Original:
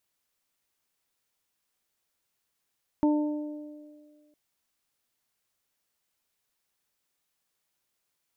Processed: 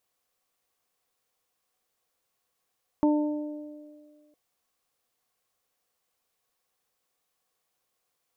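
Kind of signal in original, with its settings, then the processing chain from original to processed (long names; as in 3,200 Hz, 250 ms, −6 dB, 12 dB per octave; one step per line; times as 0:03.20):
harmonic partials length 1.31 s, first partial 299 Hz, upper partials −11/−11.5 dB, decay 1.78 s, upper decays 2.11/0.98 s, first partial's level −19 dB
hollow resonant body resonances 500/730/1,100 Hz, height 10 dB, ringing for 35 ms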